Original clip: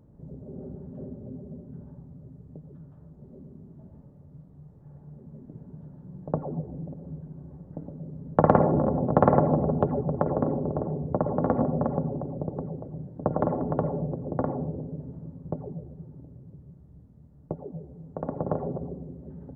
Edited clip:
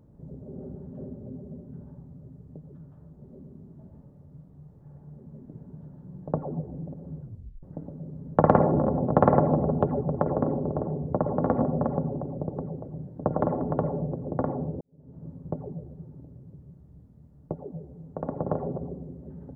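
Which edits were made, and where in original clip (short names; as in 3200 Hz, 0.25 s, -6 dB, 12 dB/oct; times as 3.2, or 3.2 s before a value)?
7.2 tape stop 0.43 s
14.81–15.27 fade in quadratic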